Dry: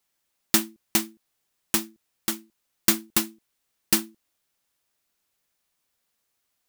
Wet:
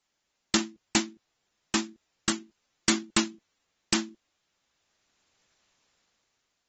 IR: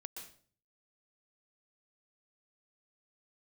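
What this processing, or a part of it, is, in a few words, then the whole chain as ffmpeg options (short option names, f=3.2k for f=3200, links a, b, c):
low-bitrate web radio: -af "dynaudnorm=f=360:g=7:m=13.5dB,alimiter=limit=-7dB:level=0:latency=1:release=57" -ar 48000 -c:a aac -b:a 24k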